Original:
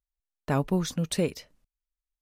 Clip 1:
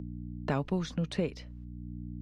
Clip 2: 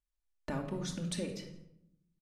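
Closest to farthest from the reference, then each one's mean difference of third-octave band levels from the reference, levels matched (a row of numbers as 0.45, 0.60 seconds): 1, 2; 5.0, 7.5 decibels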